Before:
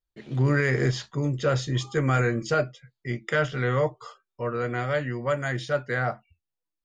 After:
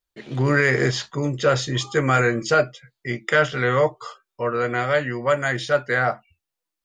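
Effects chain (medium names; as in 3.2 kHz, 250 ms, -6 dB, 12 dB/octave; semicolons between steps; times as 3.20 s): bass shelf 240 Hz -9.5 dB; trim +7.5 dB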